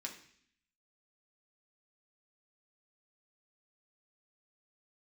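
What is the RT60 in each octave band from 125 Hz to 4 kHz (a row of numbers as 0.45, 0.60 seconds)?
0.75, 0.85, 0.60, 0.55, 0.75, 0.75 seconds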